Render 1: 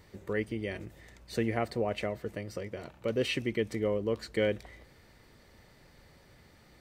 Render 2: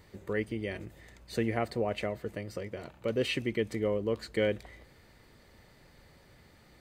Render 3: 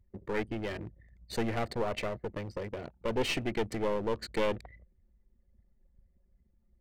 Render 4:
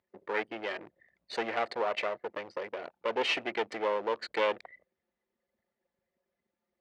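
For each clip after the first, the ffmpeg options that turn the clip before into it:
ffmpeg -i in.wav -af "bandreject=frequency=5600:width=14" out.wav
ffmpeg -i in.wav -af "anlmdn=0.0398,aeval=exprs='clip(val(0),-1,0.0133)':channel_layout=same,volume=3dB" out.wav
ffmpeg -i in.wav -af "highpass=560,lowpass=3800,volume=5dB" out.wav

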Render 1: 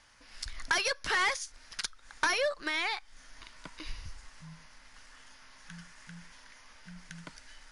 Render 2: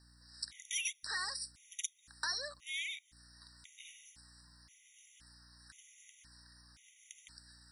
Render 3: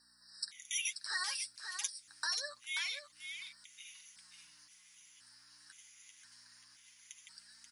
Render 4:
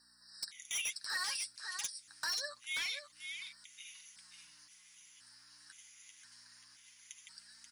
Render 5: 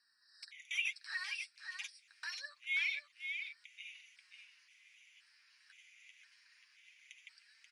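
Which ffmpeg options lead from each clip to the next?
ffmpeg -i in.wav -af "aderivative,aeval=exprs='val(0)+0.000501*(sin(2*PI*60*n/s)+sin(2*PI*2*60*n/s)/2+sin(2*PI*3*60*n/s)/3+sin(2*PI*4*60*n/s)/4+sin(2*PI*5*60*n/s)/5)':channel_layout=same,afftfilt=real='re*gt(sin(2*PI*0.96*pts/sr)*(1-2*mod(floor(b*sr/1024/1900),2)),0)':imag='im*gt(sin(2*PI*0.96*pts/sr)*(1-2*mod(floor(b*sr/1024/1900),2)),0)':win_size=1024:overlap=0.75,volume=3dB" out.wav
ffmpeg -i in.wav -af "highpass=frequency=880:poles=1,flanger=delay=4.1:depth=6.4:regen=30:speed=0.26:shape=triangular,aecho=1:1:534:0.422,volume=5dB" out.wav
ffmpeg -i in.wav -af "asoftclip=type=hard:threshold=-33dB,volume=1dB" out.wav
ffmpeg -i in.wav -af "bandpass=frequency=2400:width_type=q:width=4.4:csg=0,volume=7dB" out.wav

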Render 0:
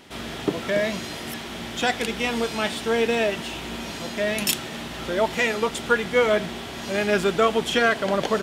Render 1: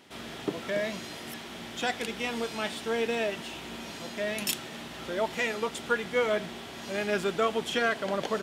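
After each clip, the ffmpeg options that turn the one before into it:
ffmpeg -i in.wav -af "highpass=frequency=110:poles=1,volume=-7dB" out.wav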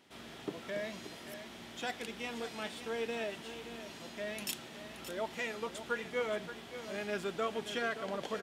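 ffmpeg -i in.wav -af "aecho=1:1:575:0.266,volume=-8.5dB" out.wav

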